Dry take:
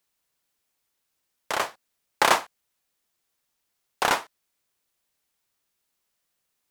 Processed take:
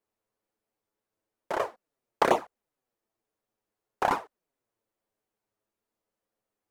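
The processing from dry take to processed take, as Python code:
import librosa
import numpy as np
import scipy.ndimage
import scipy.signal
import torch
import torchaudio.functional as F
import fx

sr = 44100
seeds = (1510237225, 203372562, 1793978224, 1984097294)

y = fx.curve_eq(x, sr, hz=(150.0, 450.0, 3600.0), db=(0, 6, -13))
y = fx.env_flanger(y, sr, rest_ms=9.3, full_db=-15.5)
y = y * 10.0 ** (1.0 / 20.0)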